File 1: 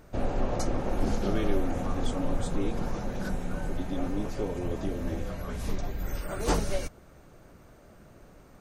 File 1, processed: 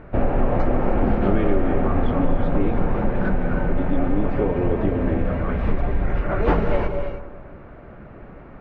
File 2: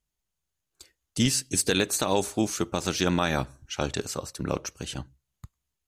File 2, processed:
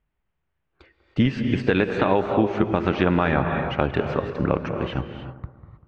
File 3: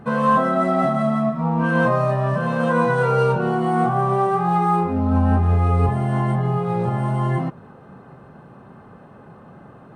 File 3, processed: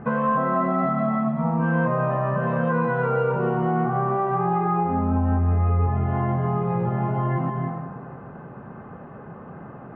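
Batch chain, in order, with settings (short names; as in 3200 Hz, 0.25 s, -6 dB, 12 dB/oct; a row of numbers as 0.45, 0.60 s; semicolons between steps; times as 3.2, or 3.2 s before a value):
LPF 2400 Hz 24 dB/oct; on a send: analogue delay 0.195 s, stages 2048, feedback 42%, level -12.5 dB; on the sum: non-linear reverb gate 0.34 s rising, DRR 8 dB; compressor 2.5:1, threshold -26 dBFS; match loudness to -23 LUFS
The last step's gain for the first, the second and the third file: +11.0, +9.0, +3.0 dB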